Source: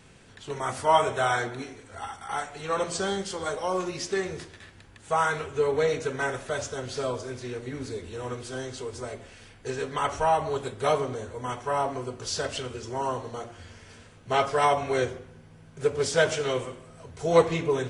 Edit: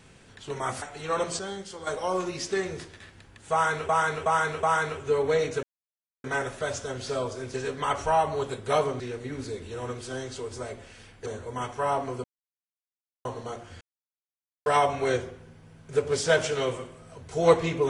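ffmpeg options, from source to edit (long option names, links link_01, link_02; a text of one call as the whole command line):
ffmpeg -i in.wav -filter_complex "[0:a]asplit=15[link_01][link_02][link_03][link_04][link_05][link_06][link_07][link_08][link_09][link_10][link_11][link_12][link_13][link_14][link_15];[link_01]atrim=end=0.822[link_16];[link_02]atrim=start=2.418:end=2.992[link_17];[link_03]atrim=start=2.988:end=3.472,asetpts=PTS-STARTPTS,volume=-7dB[link_18];[link_04]atrim=start=3.468:end=5.492[link_19];[link_05]atrim=start=5.118:end=5.492[link_20];[link_06]atrim=start=5.118:end=5.492[link_21];[link_07]atrim=start=5.118:end=6.12,asetpts=PTS-STARTPTS,afade=type=out:start_time=0.998:duration=0.004:curve=hsin,apad=pad_dur=0.61[link_22];[link_08]atrim=start=6.12:end=7.422,asetpts=PTS-STARTPTS,afade=type=in:duration=0.004:curve=hsin[link_23];[link_09]atrim=start=9.678:end=11.142[link_24];[link_10]atrim=start=7.418:end=9.682[link_25];[link_11]atrim=start=11.138:end=12.12,asetpts=PTS-STARTPTS,afade=type=out:start_time=0.978:duration=0.004:curve=hsin[link_26];[link_12]atrim=start=12.12:end=13.13,asetpts=PTS-STARTPTS,volume=0[link_27];[link_13]atrim=start=13.13:end=13.69,asetpts=PTS-STARTPTS,afade=type=in:duration=0.004:curve=hsin,afade=type=out:start_time=0.556:duration=0.004:curve=hsin[link_28];[link_14]atrim=start=13.69:end=14.54,asetpts=PTS-STARTPTS,volume=0[link_29];[link_15]atrim=start=14.54,asetpts=PTS-STARTPTS,afade=type=in:duration=0.004:curve=hsin[link_30];[link_16][link_17]acrossfade=duration=0.004:curve1=hsin:curve2=hsin[link_31];[link_31][link_18]acrossfade=duration=0.004:curve1=hsin:curve2=hsin[link_32];[link_32][link_19]acrossfade=duration=0.004:curve1=hsin:curve2=hsin[link_33];[link_33][link_20]acrossfade=duration=0.004:curve1=hsin:curve2=hsin[link_34];[link_34][link_21]acrossfade=duration=0.004:curve1=hsin:curve2=hsin[link_35];[link_22][link_23]concat=n=2:v=0:a=1[link_36];[link_35][link_36]acrossfade=duration=0.004:curve1=hsin:curve2=hsin[link_37];[link_37][link_24]acrossfade=duration=0.004:curve1=hsin:curve2=hsin[link_38];[link_38][link_25]acrossfade=duration=0.004:curve1=hsin:curve2=hsin[link_39];[link_26][link_27][link_28][link_29][link_30]concat=n=5:v=0:a=1[link_40];[link_39][link_40]acrossfade=duration=0.004:curve1=hsin:curve2=hsin" out.wav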